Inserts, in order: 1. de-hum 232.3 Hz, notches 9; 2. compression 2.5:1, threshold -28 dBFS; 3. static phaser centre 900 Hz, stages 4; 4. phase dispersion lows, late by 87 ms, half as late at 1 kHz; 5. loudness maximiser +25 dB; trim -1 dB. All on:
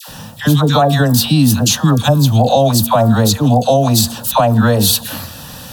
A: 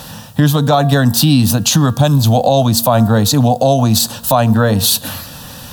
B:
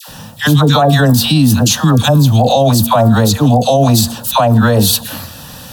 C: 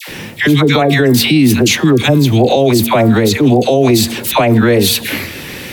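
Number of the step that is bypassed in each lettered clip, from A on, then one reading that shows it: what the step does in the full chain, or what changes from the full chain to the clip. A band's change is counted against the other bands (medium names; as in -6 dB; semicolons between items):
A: 4, momentary loudness spread change -2 LU; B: 2, mean gain reduction 4.5 dB; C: 3, 2 kHz band +7.5 dB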